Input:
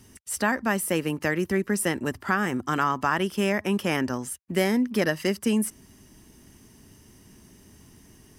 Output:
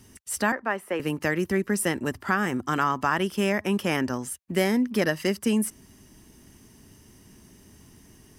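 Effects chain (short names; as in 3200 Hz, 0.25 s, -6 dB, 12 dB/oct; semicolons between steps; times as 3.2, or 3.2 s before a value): 0.52–1 three-band isolator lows -16 dB, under 330 Hz, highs -19 dB, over 2700 Hz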